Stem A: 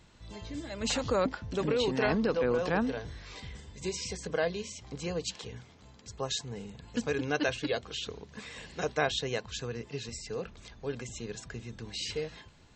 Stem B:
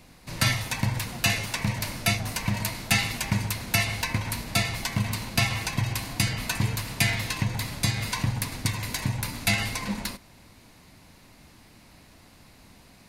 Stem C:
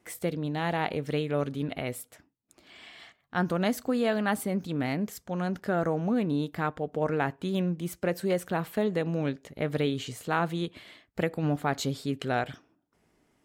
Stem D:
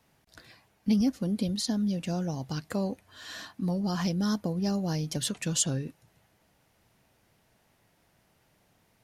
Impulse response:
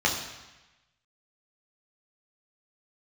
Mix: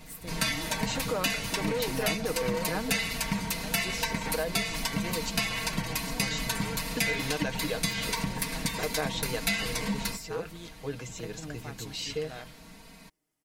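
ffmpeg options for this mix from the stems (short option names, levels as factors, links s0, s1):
-filter_complex "[0:a]volume=1[s0];[1:a]aecho=1:1:4.4:0.9,volume=0.891[s1];[2:a]aemphasis=mode=production:type=75kf,volume=0.133,asplit=2[s2][s3];[3:a]aeval=exprs='abs(val(0))':c=same,volume=0.112[s4];[s3]apad=whole_len=398554[s5];[s4][s5]sidechaincompress=threshold=0.00251:ratio=8:attack=16:release=408[s6];[s0][s1][s2][s6]amix=inputs=4:normalize=0,aecho=1:1:6.4:0.49,acompressor=threshold=0.0398:ratio=2.5"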